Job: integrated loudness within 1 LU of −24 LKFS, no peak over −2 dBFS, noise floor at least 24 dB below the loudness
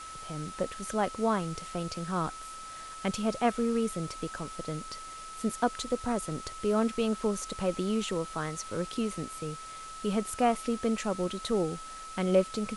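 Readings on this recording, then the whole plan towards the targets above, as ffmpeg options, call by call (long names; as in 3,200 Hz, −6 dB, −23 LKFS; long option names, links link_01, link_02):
interfering tone 1,300 Hz; level of the tone −42 dBFS; background noise floor −44 dBFS; target noise floor −56 dBFS; integrated loudness −32.0 LKFS; sample peak −12.0 dBFS; target loudness −24.0 LKFS
→ -af "bandreject=frequency=1300:width=30"
-af "afftdn=noise_reduction=12:noise_floor=-44"
-af "volume=8dB"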